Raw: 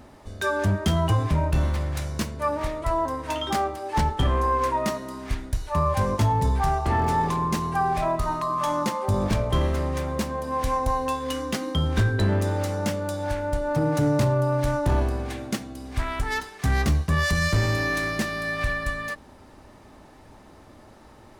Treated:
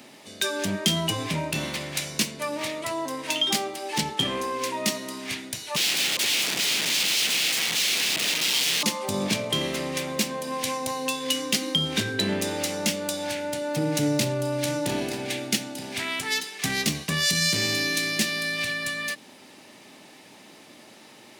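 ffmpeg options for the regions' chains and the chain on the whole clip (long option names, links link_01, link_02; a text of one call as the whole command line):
ffmpeg -i in.wav -filter_complex "[0:a]asettb=1/sr,asplit=3[link_01][link_02][link_03];[link_01]atrim=end=5.764[link_04];[link_02]atrim=start=5.76:end=8.83,asetpts=PTS-STARTPTS,afade=type=in:duration=0.004:curve=qsin,afade=type=out:start_time=3.066:duration=0.004:curve=qsin,aeval=exprs='(mod(17.8*val(0)+1,2)-1)/17.8':channel_layout=same,highshelf=frequency=8700:gain=-9[link_05];[link_03]atrim=start=8.826[link_06];[link_04][link_05]acrossfade=duration=0.004:curve1=hsin:curve2=qsin[link_07];[link_07][link_06]acrossfade=duration=0.004:curve1=qsin:curve2=hsin,asettb=1/sr,asplit=3[link_08][link_09][link_10];[link_08]atrim=end=13.334[link_11];[link_09]atrim=start=13.33:end=16.11,asetpts=PTS-STARTPTS,afade=type=in:duration=0.004:curve=qsin,afade=type=out:start_time=2.776:duration=0.004:curve=qsin,bandreject=frequency=1100:width=6.7,aecho=1:1:923:0.224,atrim=end_sample=122598[link_12];[link_10]atrim=start=16.106[link_13];[link_11][link_12]acrossfade=duration=0.004:curve1=hsin:curve2=qsin[link_14];[link_14][link_13]acrossfade=duration=0.004:curve1=qsin:curve2=hsin,highpass=frequency=160:width=0.5412,highpass=frequency=160:width=1.3066,highshelf=frequency=1800:width_type=q:width=1.5:gain=9.5,acrossover=split=450|3000[link_15][link_16][link_17];[link_16]acompressor=threshold=-30dB:ratio=6[link_18];[link_15][link_18][link_17]amix=inputs=3:normalize=0" out.wav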